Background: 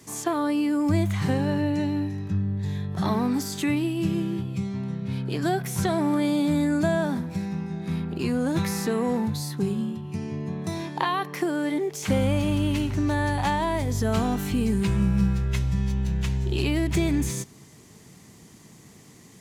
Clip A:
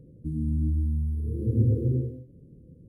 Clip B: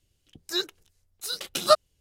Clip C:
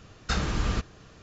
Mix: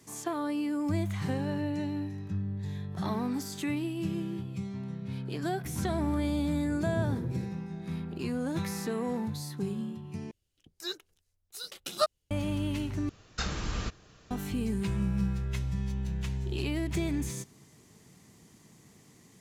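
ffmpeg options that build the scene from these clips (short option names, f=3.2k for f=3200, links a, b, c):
-filter_complex "[0:a]volume=-7.5dB[a];[3:a]highshelf=f=3.1k:g=5[b];[a]asplit=3[c][d][e];[c]atrim=end=10.314[f];[2:a]atrim=end=2,asetpts=PTS-STARTPTS,volume=-9dB[g];[d]atrim=start=12.306:end=13.094[h];[b]atrim=end=1.22,asetpts=PTS-STARTPTS,volume=-6.5dB[i];[e]atrim=start=14.306[j];[1:a]atrim=end=2.88,asetpts=PTS-STARTPTS,volume=-10dB,afade=t=in:d=0.004:c=hsin,afade=t=out:st=2.876:d=0.004:c=hsin,adelay=5400[k];[f][g]acrossfade=d=0.004:c1=hsin:c2=hsin[l];[l][h]acrossfade=d=0.004:c1=hsin:c2=hsin[m];[m][i]acrossfade=d=0.004:c1=hsin:c2=hsin[n];[n][j]acrossfade=d=0.004:c1=hsin:c2=hsin[o];[o][k]amix=inputs=2:normalize=0"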